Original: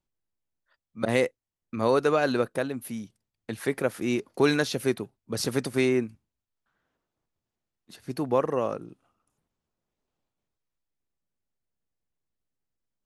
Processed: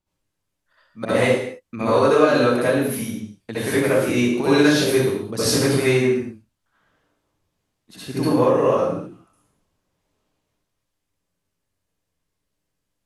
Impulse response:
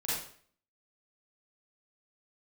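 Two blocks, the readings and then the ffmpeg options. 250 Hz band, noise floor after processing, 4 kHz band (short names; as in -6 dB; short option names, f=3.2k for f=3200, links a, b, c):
+9.0 dB, -78 dBFS, +9.0 dB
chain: -filter_complex "[0:a]acompressor=threshold=-25dB:ratio=4[a];[1:a]atrim=start_sample=2205,afade=t=out:st=0.25:d=0.01,atrim=end_sample=11466,asetrate=27342,aresample=44100[b];[a][b]afir=irnorm=-1:irlink=0,volume=3.5dB"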